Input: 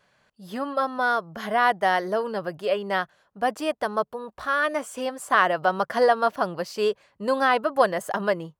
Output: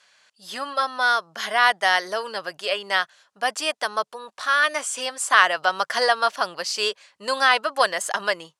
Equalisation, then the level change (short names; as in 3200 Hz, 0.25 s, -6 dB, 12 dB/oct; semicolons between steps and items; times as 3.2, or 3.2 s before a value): weighting filter ITU-R 468; +1.5 dB